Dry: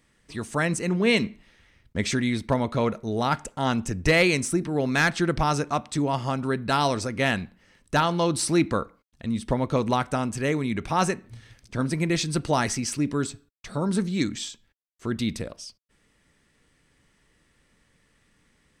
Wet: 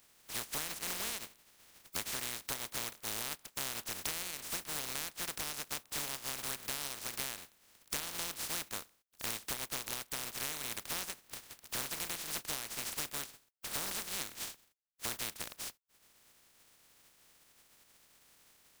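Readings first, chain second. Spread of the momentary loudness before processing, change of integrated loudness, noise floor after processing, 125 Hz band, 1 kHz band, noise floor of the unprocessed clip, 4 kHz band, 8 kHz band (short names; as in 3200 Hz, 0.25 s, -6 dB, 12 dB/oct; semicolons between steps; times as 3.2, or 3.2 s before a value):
13 LU, -13.0 dB, -70 dBFS, -26.5 dB, -19.0 dB, -66 dBFS, -7.0 dB, -3.5 dB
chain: spectral contrast lowered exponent 0.11; transient shaper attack -1 dB, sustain -6 dB; compressor 16:1, threshold -35 dBFS, peak gain reduction 21.5 dB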